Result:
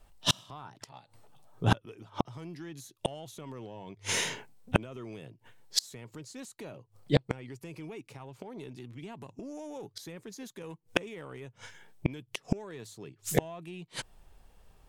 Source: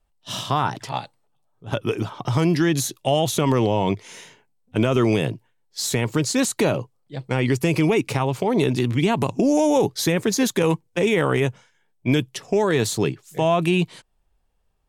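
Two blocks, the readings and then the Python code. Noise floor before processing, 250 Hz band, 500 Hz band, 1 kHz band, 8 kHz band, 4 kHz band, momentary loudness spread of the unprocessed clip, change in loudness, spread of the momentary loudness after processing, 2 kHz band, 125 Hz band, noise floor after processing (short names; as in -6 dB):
-67 dBFS, -17.0 dB, -17.0 dB, -14.5 dB, -10.0 dB, -7.0 dB, 10 LU, -14.0 dB, 17 LU, -11.0 dB, -13.0 dB, -68 dBFS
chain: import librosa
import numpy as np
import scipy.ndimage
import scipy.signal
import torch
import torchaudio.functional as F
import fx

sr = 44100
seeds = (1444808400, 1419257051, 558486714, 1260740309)

p1 = fx.hum_notches(x, sr, base_hz=50, count=2)
p2 = 10.0 ** (-16.5 / 20.0) * np.tanh(p1 / 10.0 ** (-16.5 / 20.0))
p3 = p1 + (p2 * 10.0 ** (-5.0 / 20.0))
p4 = fx.gate_flip(p3, sr, shuts_db=-19.0, range_db=-35)
y = p4 * 10.0 ** (8.0 / 20.0)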